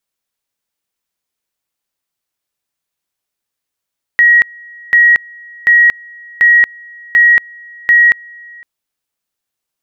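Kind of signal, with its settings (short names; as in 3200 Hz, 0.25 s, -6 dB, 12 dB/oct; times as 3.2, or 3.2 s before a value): two-level tone 1900 Hz -4 dBFS, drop 27.5 dB, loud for 0.23 s, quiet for 0.51 s, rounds 6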